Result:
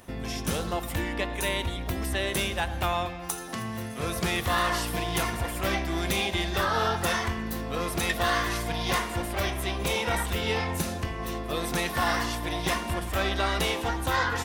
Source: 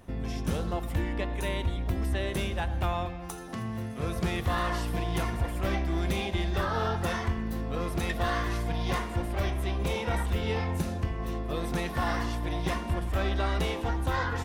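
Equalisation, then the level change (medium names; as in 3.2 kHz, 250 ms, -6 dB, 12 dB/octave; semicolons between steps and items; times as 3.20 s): tilt EQ +2 dB/octave; +4.5 dB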